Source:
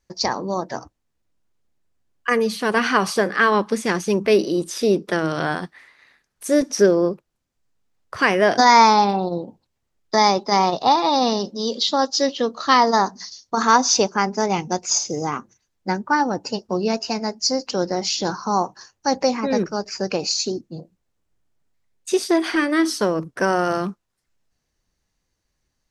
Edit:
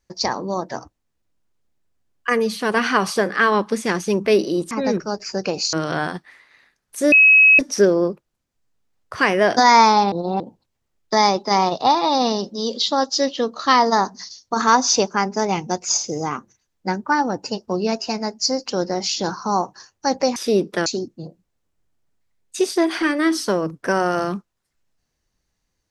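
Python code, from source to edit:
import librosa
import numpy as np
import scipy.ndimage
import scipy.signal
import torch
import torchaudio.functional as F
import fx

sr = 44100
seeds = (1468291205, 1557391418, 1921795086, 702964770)

y = fx.edit(x, sr, fx.swap(start_s=4.71, length_s=0.5, other_s=19.37, other_length_s=1.02),
    fx.insert_tone(at_s=6.6, length_s=0.47, hz=2560.0, db=-7.5),
    fx.reverse_span(start_s=9.13, length_s=0.28), tone=tone)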